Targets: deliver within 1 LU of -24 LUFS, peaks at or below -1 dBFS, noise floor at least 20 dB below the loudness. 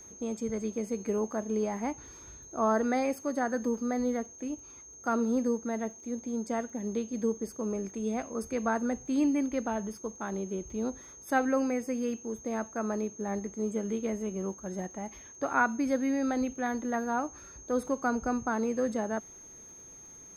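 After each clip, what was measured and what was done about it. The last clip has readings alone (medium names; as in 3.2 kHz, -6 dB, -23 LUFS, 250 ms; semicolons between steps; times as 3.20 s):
tick rate 27 per s; steady tone 6.4 kHz; tone level -48 dBFS; loudness -32.0 LUFS; peak level -12.5 dBFS; loudness target -24.0 LUFS
-> de-click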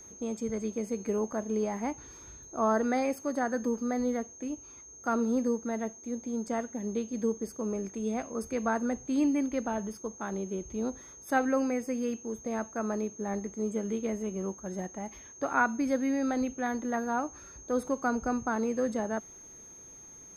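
tick rate 0 per s; steady tone 6.4 kHz; tone level -48 dBFS
-> band-stop 6.4 kHz, Q 30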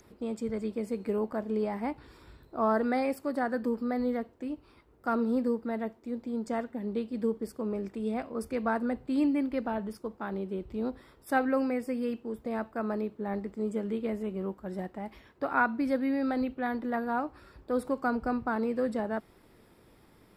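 steady tone not found; loudness -32.0 LUFS; peak level -12.5 dBFS; loudness target -24.0 LUFS
-> trim +8 dB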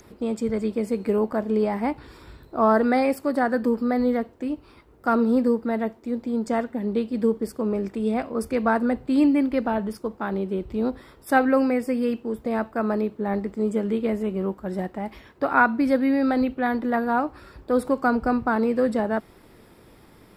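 loudness -24.0 LUFS; peak level -4.5 dBFS; noise floor -52 dBFS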